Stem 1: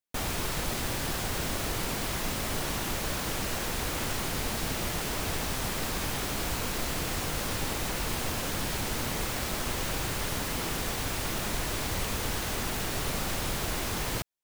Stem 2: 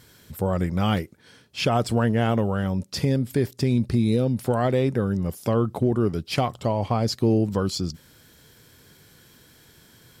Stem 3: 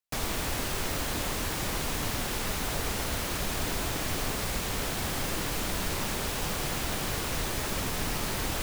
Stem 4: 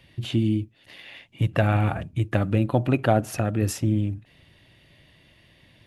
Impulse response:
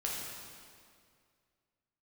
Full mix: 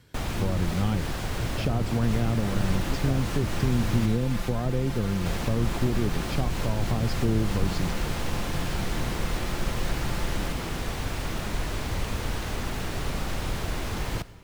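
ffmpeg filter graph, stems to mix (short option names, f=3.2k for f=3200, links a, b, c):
-filter_complex "[0:a]volume=-0.5dB,asplit=3[a][b][c];[a]atrim=end=4.06,asetpts=PTS-STARTPTS,afade=t=out:st=4.056:d=0.004:c=hsin[d];[b]atrim=start=4.06:end=5.26,asetpts=PTS-STARTPTS,volume=0[e];[c]atrim=start=5.26,asetpts=PTS-STARTPTS,afade=t=in:d=0.004:c=hsin[f];[d][e][f]concat=n=3:v=0:a=1,asplit=2[g][h];[h]volume=-17.5dB[i];[1:a]volume=-5.5dB[j];[2:a]aecho=1:1:5.8:0.95,adelay=1900,volume=-4.5dB[k];[3:a]volume=-15dB[l];[4:a]atrim=start_sample=2205[m];[i][m]afir=irnorm=-1:irlink=0[n];[g][j][k][l][n]amix=inputs=5:normalize=0,lowpass=f=4k:p=1,lowshelf=f=140:g=5.5,acrossover=split=310[o][p];[p]acompressor=threshold=-31dB:ratio=6[q];[o][q]amix=inputs=2:normalize=0"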